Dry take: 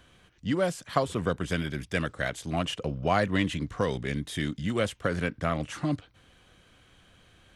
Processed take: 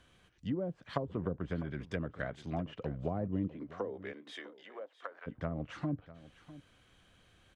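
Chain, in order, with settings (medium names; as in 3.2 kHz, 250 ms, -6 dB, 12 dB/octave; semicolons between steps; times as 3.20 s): low-pass that closes with the level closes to 450 Hz, closed at -23 dBFS; 3.47–5.26 s: high-pass 230 Hz -> 780 Hz 24 dB/octave; on a send: delay 651 ms -17 dB; on the sum: trim -6.5 dB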